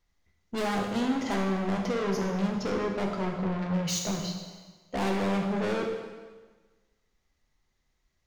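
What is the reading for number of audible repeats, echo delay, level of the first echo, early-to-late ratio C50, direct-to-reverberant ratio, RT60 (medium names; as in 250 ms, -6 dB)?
no echo, no echo, no echo, 4.0 dB, 1.0 dB, 1.3 s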